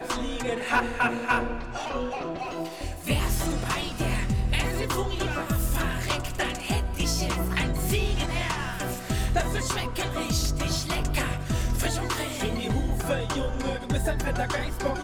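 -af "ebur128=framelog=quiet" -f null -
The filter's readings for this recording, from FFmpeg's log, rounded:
Integrated loudness:
  I:         -28.0 LUFS
  Threshold: -38.0 LUFS
Loudness range:
  LRA:         1.1 LU
  Threshold: -48.0 LUFS
  LRA low:   -28.6 LUFS
  LRA high:  -27.6 LUFS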